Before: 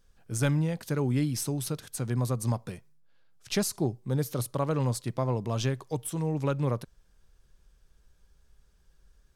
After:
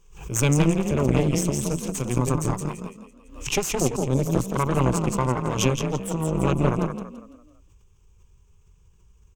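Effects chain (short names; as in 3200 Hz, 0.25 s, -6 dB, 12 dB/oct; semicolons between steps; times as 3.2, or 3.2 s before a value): ripple EQ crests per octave 0.72, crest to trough 15 dB; frequency-shifting echo 0.168 s, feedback 42%, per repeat +31 Hz, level -3 dB; added harmonics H 4 -7 dB, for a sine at -8 dBFS; backwards sustainer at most 91 dB/s; gain -2.5 dB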